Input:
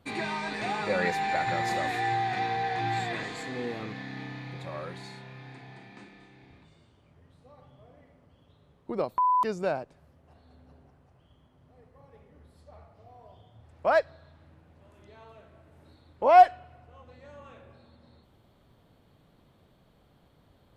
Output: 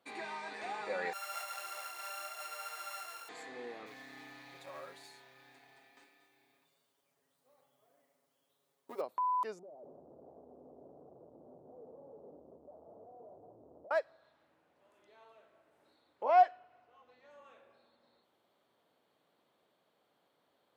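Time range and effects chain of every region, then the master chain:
1.13–3.29 s: sorted samples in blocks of 32 samples + high-pass 850 Hz + detune thickener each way 18 cents
3.86–9.01 s: companding laws mixed up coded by A + treble shelf 5.9 kHz +10.5 dB + comb 7.3 ms, depth 83%
9.59–13.91 s: one-bit comparator + inverse Chebyshev low-pass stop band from 2.1 kHz, stop band 60 dB
16.25–17.31 s: low-pass 6.4 kHz 24 dB/octave + band-stop 540 Hz, Q 13
whole clip: high-pass 410 Hz 12 dB/octave; dynamic bell 3.6 kHz, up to -4 dB, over -47 dBFS, Q 0.71; trim -8 dB

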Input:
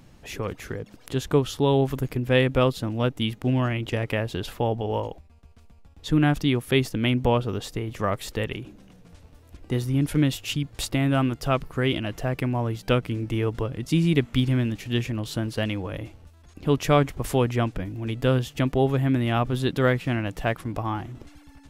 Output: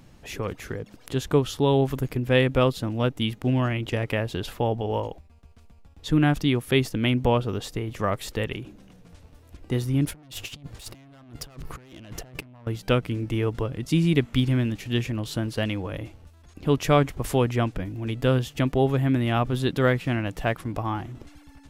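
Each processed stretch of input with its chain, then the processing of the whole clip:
10.05–12.67 s: valve stage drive 28 dB, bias 0.4 + compressor with a negative ratio -39 dBFS, ratio -0.5
whole clip: none

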